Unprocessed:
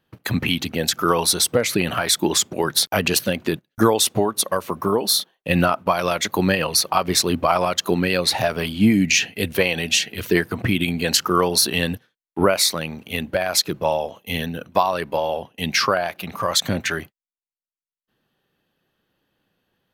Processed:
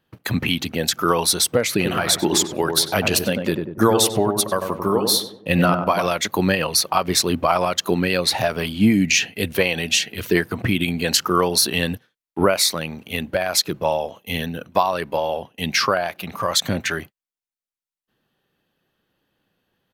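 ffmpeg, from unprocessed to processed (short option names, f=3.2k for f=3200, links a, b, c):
-filter_complex "[0:a]asplit=3[a][b][c];[a]afade=t=out:st=1.79:d=0.02[d];[b]asplit=2[e][f];[f]adelay=96,lowpass=f=1k:p=1,volume=-4dB,asplit=2[g][h];[h]adelay=96,lowpass=f=1k:p=1,volume=0.51,asplit=2[i][j];[j]adelay=96,lowpass=f=1k:p=1,volume=0.51,asplit=2[k][l];[l]adelay=96,lowpass=f=1k:p=1,volume=0.51,asplit=2[m][n];[n]adelay=96,lowpass=f=1k:p=1,volume=0.51,asplit=2[o][p];[p]adelay=96,lowpass=f=1k:p=1,volume=0.51,asplit=2[q][r];[r]adelay=96,lowpass=f=1k:p=1,volume=0.51[s];[e][g][i][k][m][o][q][s]amix=inputs=8:normalize=0,afade=t=in:st=1.79:d=0.02,afade=t=out:st=6.06:d=0.02[t];[c]afade=t=in:st=6.06:d=0.02[u];[d][t][u]amix=inputs=3:normalize=0"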